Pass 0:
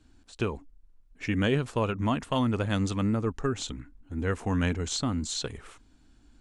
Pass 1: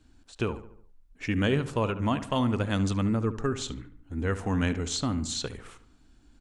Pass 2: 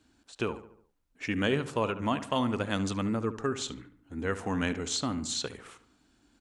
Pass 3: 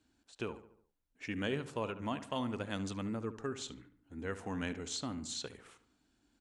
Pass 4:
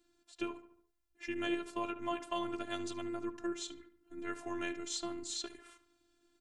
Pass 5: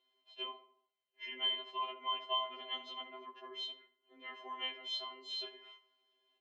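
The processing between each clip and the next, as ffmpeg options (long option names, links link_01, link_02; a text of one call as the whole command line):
ffmpeg -i in.wav -filter_complex "[0:a]asplit=2[link_01][link_02];[link_02]adelay=72,lowpass=frequency=2300:poles=1,volume=-12.5dB,asplit=2[link_03][link_04];[link_04]adelay=72,lowpass=frequency=2300:poles=1,volume=0.52,asplit=2[link_05][link_06];[link_06]adelay=72,lowpass=frequency=2300:poles=1,volume=0.52,asplit=2[link_07][link_08];[link_08]adelay=72,lowpass=frequency=2300:poles=1,volume=0.52,asplit=2[link_09][link_10];[link_10]adelay=72,lowpass=frequency=2300:poles=1,volume=0.52[link_11];[link_01][link_03][link_05][link_07][link_09][link_11]amix=inputs=6:normalize=0" out.wav
ffmpeg -i in.wav -af "highpass=frequency=240:poles=1" out.wav
ffmpeg -i in.wav -af "equalizer=frequency=1200:width_type=o:width=0.39:gain=-2.5,volume=-8dB" out.wav
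ffmpeg -i in.wav -af "afftfilt=real='hypot(re,im)*cos(PI*b)':imag='0':win_size=512:overlap=0.75,volume=4dB" out.wav
ffmpeg -i in.wav -af "highpass=frequency=410:width=0.5412,highpass=frequency=410:width=1.3066,equalizer=frequency=450:width_type=q:width=4:gain=6,equalizer=frequency=670:width_type=q:width=4:gain=8,equalizer=frequency=950:width_type=q:width=4:gain=-8,equalizer=frequency=1400:width_type=q:width=4:gain=-5,equalizer=frequency=2000:width_type=q:width=4:gain=-4,equalizer=frequency=3100:width_type=q:width=4:gain=8,lowpass=frequency=3300:width=0.5412,lowpass=frequency=3300:width=1.3066,afftfilt=real='re*2.45*eq(mod(b,6),0)':imag='im*2.45*eq(mod(b,6),0)':win_size=2048:overlap=0.75,volume=4dB" out.wav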